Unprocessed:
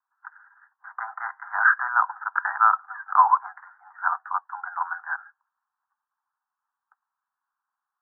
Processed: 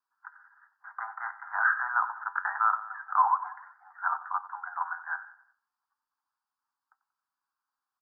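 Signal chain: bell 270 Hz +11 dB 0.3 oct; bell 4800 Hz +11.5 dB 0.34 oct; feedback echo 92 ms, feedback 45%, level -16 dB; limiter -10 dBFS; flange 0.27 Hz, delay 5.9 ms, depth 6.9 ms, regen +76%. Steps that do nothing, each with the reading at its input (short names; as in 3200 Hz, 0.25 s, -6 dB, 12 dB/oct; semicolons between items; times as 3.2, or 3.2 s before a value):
bell 270 Hz: input band starts at 640 Hz; bell 4800 Hz: input band ends at 1900 Hz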